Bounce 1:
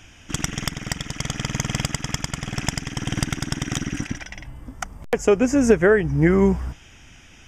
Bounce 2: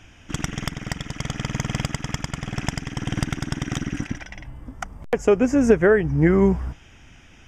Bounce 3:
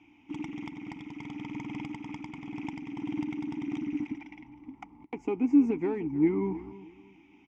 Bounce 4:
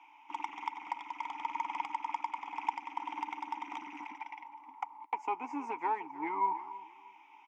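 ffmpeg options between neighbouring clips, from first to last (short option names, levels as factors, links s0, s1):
-af "highshelf=f=3400:g=-8"
-filter_complex "[0:a]asplit=2[s0][s1];[s1]asoftclip=type=tanh:threshold=0.0794,volume=0.501[s2];[s0][s2]amix=inputs=2:normalize=0,asplit=3[s3][s4][s5];[s3]bandpass=f=300:t=q:w=8,volume=1[s6];[s4]bandpass=f=870:t=q:w=8,volume=0.501[s7];[s5]bandpass=f=2240:t=q:w=8,volume=0.355[s8];[s6][s7][s8]amix=inputs=3:normalize=0,aecho=1:1:314|628|942:0.141|0.0424|0.0127"
-af "highpass=f=940:t=q:w=6.7"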